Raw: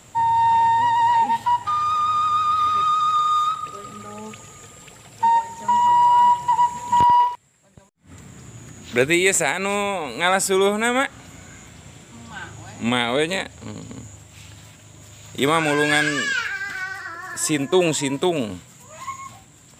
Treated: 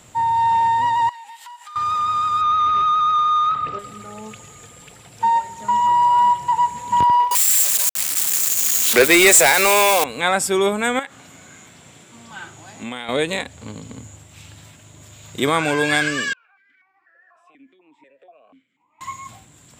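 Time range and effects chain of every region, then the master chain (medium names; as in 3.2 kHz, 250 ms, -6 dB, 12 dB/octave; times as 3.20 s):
1.09–1.76 s: high-pass 1.5 kHz + treble shelf 6.7 kHz +5.5 dB + compression 8:1, threshold -36 dBFS
2.41–3.79 s: waveshaping leveller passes 2 + low-pass 2.7 kHz
7.31–10.04 s: zero-crossing glitches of -18 dBFS + high-pass 380 Hz + waveshaping leveller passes 3
10.99–13.09 s: high-pass 110 Hz + bass shelf 210 Hz -6 dB + compression 3:1, threshold -28 dBFS
16.33–19.01 s: three-band isolator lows -15 dB, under 550 Hz, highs -13 dB, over 2.1 kHz + compression 8:1, threshold -38 dBFS + stepped vowel filter 4.1 Hz
whole clip: none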